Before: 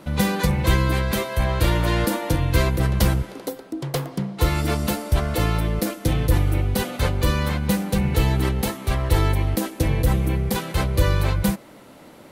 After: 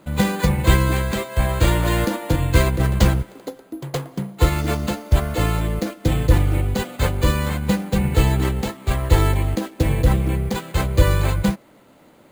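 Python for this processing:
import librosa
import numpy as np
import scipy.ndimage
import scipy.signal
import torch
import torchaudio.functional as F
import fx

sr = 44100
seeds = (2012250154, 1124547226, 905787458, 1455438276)

y = np.repeat(scipy.signal.resample_poly(x, 1, 4), 4)[:len(x)]
y = fx.upward_expand(y, sr, threshold_db=-33.0, expansion=1.5)
y = y * 10.0 ** (5.0 / 20.0)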